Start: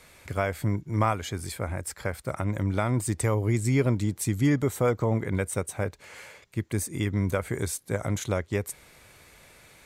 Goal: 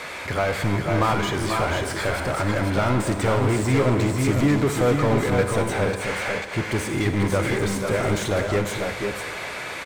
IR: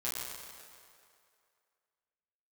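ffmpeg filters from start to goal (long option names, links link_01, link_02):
-filter_complex "[0:a]highshelf=frequency=11000:gain=-7.5,asplit=2[link_01][link_02];[link_02]highpass=frequency=720:poles=1,volume=27dB,asoftclip=type=tanh:threshold=-24.5dB[link_03];[link_01][link_03]amix=inputs=2:normalize=0,lowpass=frequency=2000:poles=1,volume=-6dB,aecho=1:1:487|502:0.422|0.473,asplit=2[link_04][link_05];[1:a]atrim=start_sample=2205,adelay=49[link_06];[link_05][link_06]afir=irnorm=-1:irlink=0,volume=-12dB[link_07];[link_04][link_07]amix=inputs=2:normalize=0,volume=6dB"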